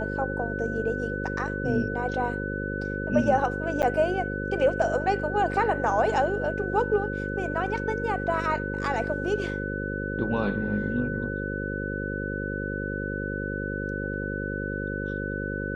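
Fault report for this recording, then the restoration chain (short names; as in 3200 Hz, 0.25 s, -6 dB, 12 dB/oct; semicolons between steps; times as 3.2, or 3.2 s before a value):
buzz 50 Hz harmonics 11 -32 dBFS
tone 1500 Hz -33 dBFS
3.82–3.83 gap 8.9 ms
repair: notch 1500 Hz, Q 30; de-hum 50 Hz, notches 11; interpolate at 3.82, 8.9 ms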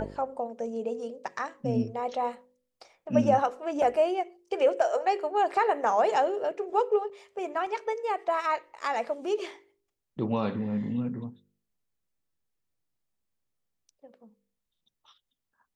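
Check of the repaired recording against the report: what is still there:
none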